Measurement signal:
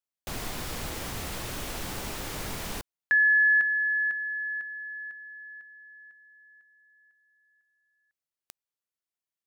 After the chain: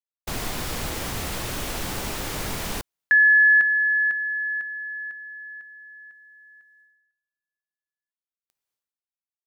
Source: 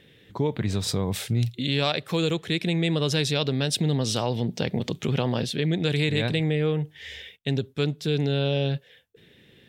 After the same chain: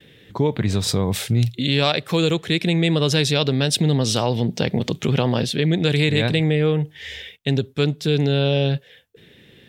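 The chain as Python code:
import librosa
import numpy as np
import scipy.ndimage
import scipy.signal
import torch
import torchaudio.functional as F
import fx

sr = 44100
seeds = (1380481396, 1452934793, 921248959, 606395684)

y = fx.gate_hold(x, sr, open_db=-52.0, close_db=-58.0, hold_ms=196.0, range_db=-30, attack_ms=6.3, release_ms=488.0)
y = F.gain(torch.from_numpy(y), 5.5).numpy()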